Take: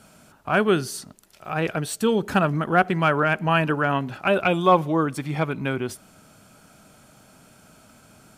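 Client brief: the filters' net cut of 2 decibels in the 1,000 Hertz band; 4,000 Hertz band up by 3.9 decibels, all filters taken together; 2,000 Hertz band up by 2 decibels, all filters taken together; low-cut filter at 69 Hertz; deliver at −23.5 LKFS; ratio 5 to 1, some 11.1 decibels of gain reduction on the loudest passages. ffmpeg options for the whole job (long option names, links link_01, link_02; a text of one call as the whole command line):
ffmpeg -i in.wav -af "highpass=69,equalizer=frequency=1000:width_type=o:gain=-4.5,equalizer=frequency=2000:width_type=o:gain=4,equalizer=frequency=4000:width_type=o:gain=4,acompressor=threshold=-27dB:ratio=5,volume=8dB" out.wav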